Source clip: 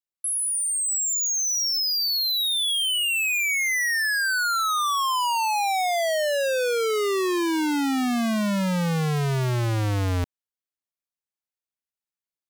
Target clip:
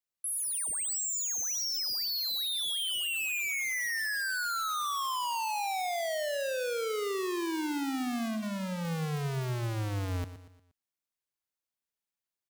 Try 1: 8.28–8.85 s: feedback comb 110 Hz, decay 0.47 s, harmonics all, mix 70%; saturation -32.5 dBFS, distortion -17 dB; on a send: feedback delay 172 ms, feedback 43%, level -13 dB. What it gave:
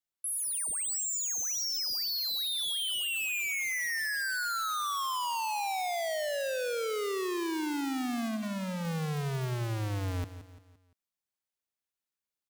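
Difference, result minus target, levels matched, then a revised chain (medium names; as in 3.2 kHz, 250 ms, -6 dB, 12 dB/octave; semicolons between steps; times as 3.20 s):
echo 54 ms late
8.28–8.85 s: feedback comb 110 Hz, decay 0.47 s, harmonics all, mix 70%; saturation -32.5 dBFS, distortion -17 dB; on a send: feedback delay 118 ms, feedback 43%, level -13 dB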